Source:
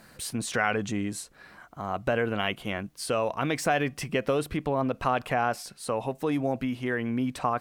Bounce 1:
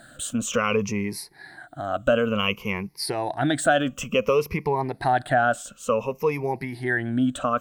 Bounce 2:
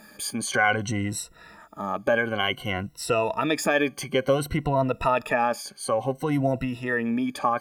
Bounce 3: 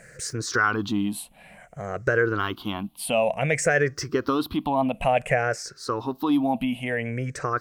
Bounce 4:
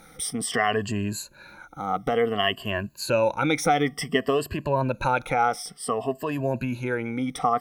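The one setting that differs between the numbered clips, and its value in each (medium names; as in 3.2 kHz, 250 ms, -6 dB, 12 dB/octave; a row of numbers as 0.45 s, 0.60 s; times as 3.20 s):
drifting ripple filter, ripples per octave: 0.82, 2, 0.52, 1.4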